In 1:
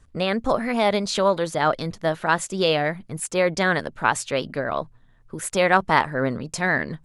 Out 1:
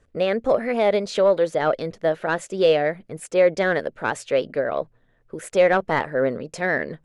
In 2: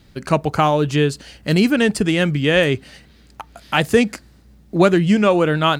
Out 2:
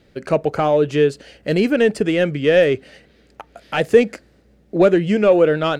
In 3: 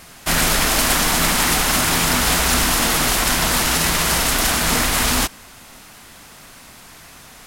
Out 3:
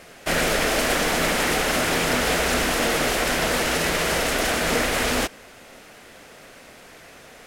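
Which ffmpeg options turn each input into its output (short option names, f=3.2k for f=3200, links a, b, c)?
-filter_complex "[0:a]asplit=2[a][b];[b]highpass=f=720:p=1,volume=11dB,asoftclip=type=tanh:threshold=-1dB[c];[a][c]amix=inputs=2:normalize=0,lowpass=f=1.9k:p=1,volume=-6dB,equalizer=f=500:t=o:w=1:g=8,equalizer=f=1k:t=o:w=1:g=-9,equalizer=f=4k:t=o:w=1:g=-3,volume=-2.5dB"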